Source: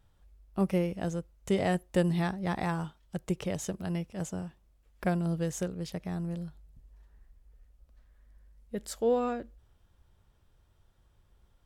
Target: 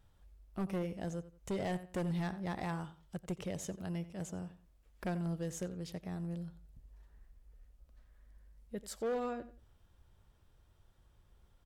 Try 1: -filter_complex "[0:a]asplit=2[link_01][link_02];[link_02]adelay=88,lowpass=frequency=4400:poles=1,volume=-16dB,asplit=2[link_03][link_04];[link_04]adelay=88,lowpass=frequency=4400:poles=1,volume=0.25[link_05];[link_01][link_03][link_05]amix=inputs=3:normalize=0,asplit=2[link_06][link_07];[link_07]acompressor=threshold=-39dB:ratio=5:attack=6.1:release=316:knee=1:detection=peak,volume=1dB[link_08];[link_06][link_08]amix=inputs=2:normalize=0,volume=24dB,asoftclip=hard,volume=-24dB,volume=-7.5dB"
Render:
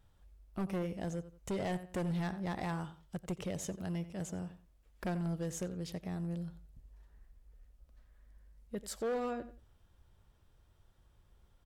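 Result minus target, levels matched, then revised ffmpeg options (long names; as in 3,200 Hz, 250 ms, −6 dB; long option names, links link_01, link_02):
downward compressor: peak gain reduction −9 dB
-filter_complex "[0:a]asplit=2[link_01][link_02];[link_02]adelay=88,lowpass=frequency=4400:poles=1,volume=-16dB,asplit=2[link_03][link_04];[link_04]adelay=88,lowpass=frequency=4400:poles=1,volume=0.25[link_05];[link_01][link_03][link_05]amix=inputs=3:normalize=0,asplit=2[link_06][link_07];[link_07]acompressor=threshold=-50dB:ratio=5:attack=6.1:release=316:knee=1:detection=peak,volume=1dB[link_08];[link_06][link_08]amix=inputs=2:normalize=0,volume=24dB,asoftclip=hard,volume=-24dB,volume=-7.5dB"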